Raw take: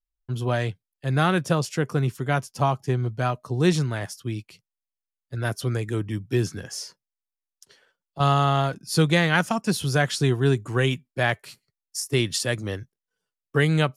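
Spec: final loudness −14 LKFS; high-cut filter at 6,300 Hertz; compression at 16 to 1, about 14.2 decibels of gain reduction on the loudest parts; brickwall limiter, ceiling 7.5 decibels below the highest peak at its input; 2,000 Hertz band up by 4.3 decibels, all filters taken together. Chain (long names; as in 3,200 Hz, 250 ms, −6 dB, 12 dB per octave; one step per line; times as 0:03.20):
low-pass filter 6,300 Hz
parametric band 2,000 Hz +5.5 dB
downward compressor 16 to 1, threshold −28 dBFS
level +22 dB
brickwall limiter −2 dBFS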